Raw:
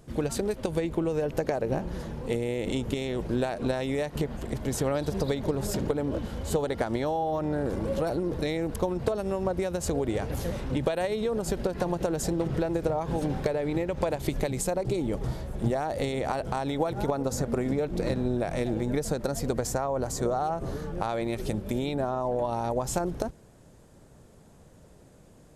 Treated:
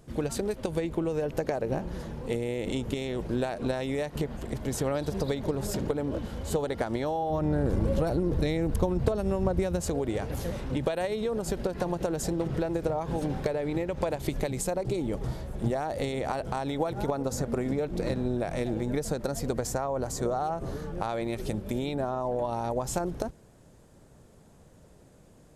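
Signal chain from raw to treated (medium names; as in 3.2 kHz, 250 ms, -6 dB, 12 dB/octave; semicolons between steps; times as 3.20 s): 7.30–9.81 s: bass shelf 170 Hz +11.5 dB; trim -1.5 dB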